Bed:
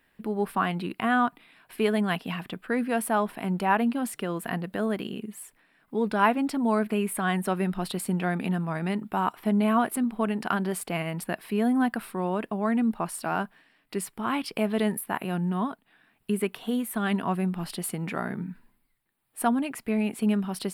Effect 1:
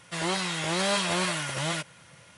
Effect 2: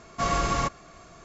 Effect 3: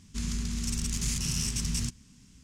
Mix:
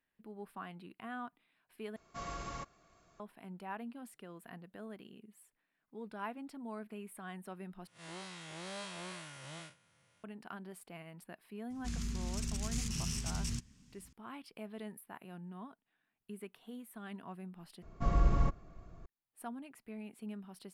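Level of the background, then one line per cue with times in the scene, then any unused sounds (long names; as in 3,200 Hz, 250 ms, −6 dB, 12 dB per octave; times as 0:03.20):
bed −20 dB
0:01.96: overwrite with 2 −17.5 dB
0:07.87: overwrite with 1 −17 dB + spectrum smeared in time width 83 ms
0:11.70: mix in 3 −6 dB + high-shelf EQ 4,200 Hz −4.5 dB
0:17.82: overwrite with 2 −13.5 dB + spectral tilt −4 dB per octave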